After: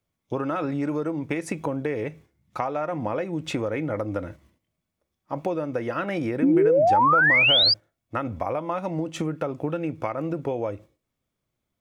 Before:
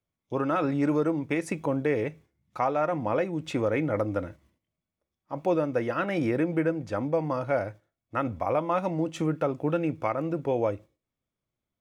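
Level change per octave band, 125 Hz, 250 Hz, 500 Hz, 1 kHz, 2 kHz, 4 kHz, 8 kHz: 0.0 dB, +1.5 dB, +1.5 dB, +5.5 dB, +12.0 dB, +23.5 dB, no reading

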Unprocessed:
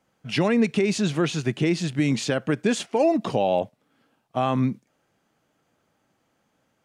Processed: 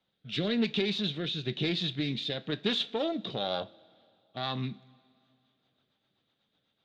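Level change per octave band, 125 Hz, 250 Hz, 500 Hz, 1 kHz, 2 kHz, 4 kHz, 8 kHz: -9.5 dB, -10.0 dB, -10.5 dB, -12.0 dB, -7.5 dB, +2.5 dB, -20.5 dB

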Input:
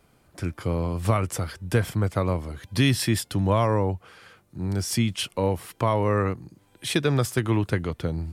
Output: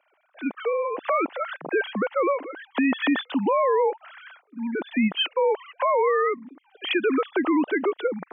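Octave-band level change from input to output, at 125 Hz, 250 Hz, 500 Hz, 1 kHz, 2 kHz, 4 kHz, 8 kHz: under -20 dB, +1.5 dB, +4.0 dB, +4.5 dB, +4.5 dB, +0.5 dB, under -40 dB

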